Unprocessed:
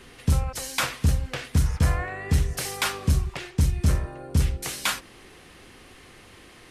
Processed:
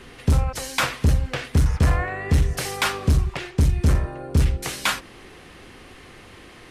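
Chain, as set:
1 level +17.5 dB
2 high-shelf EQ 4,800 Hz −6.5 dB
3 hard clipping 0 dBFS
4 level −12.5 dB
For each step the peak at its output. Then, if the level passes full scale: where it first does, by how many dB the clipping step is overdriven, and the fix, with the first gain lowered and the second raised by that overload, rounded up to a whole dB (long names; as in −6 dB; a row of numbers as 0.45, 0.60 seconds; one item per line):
+5.0, +5.0, 0.0, −12.5 dBFS
step 1, 5.0 dB
step 1 +12.5 dB, step 4 −7.5 dB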